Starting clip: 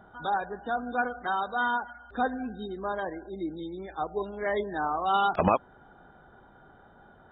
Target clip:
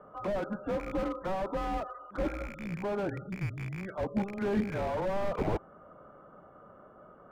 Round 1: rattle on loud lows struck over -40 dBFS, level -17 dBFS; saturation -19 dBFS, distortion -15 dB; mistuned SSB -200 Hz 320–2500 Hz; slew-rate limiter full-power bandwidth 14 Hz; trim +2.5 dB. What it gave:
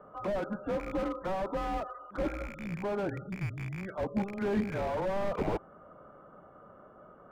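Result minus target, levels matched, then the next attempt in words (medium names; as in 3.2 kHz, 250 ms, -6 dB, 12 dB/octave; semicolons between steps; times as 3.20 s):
saturation: distortion +11 dB
rattle on loud lows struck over -40 dBFS, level -17 dBFS; saturation -9.5 dBFS, distortion -26 dB; mistuned SSB -200 Hz 320–2500 Hz; slew-rate limiter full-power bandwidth 14 Hz; trim +2.5 dB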